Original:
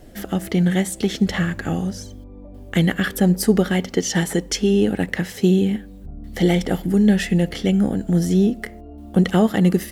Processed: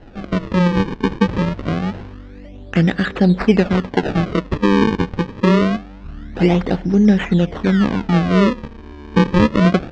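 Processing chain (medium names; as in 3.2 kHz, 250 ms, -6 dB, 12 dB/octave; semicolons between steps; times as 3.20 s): decimation with a swept rate 37×, swing 160% 0.25 Hz; Gaussian low-pass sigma 2 samples; trim +3 dB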